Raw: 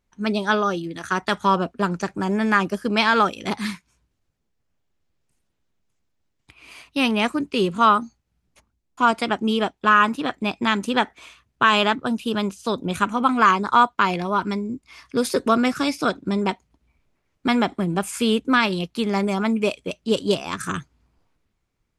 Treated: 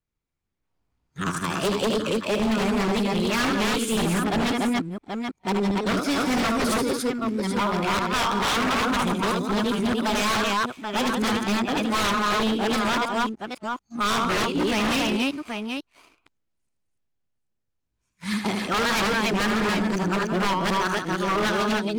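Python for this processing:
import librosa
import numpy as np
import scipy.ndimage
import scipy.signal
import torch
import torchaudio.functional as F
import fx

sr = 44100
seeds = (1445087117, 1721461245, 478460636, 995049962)

p1 = np.flip(x).copy()
p2 = fx.spec_box(p1, sr, start_s=15.18, length_s=0.48, low_hz=230.0, high_hz=1600.0, gain_db=9)
p3 = fx.leveller(p2, sr, passes=2)
p4 = p3 + fx.echo_multitap(p3, sr, ms=(76, 170, 286, 782), db=(-6.5, -11.0, -3.0, -9.0), dry=0)
p5 = 10.0 ** (-10.0 / 20.0) * (np.abs((p4 / 10.0 ** (-10.0 / 20.0) + 3.0) % 4.0 - 2.0) - 1.0)
p6 = fx.record_warp(p5, sr, rpm=78.0, depth_cents=100.0)
y = F.gain(torch.from_numpy(p6), -8.0).numpy()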